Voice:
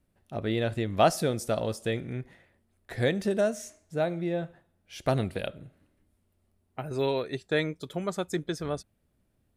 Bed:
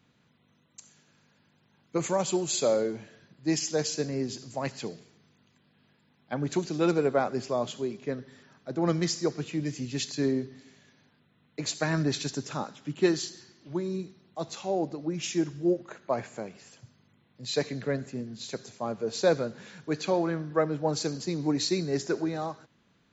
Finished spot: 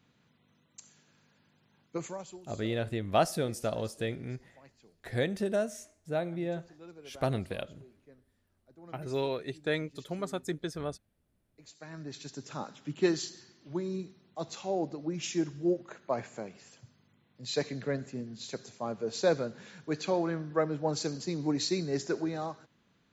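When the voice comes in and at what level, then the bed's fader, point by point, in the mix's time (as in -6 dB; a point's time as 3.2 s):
2.15 s, -4.0 dB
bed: 1.82 s -2 dB
2.51 s -25.5 dB
11.5 s -25.5 dB
12.72 s -3 dB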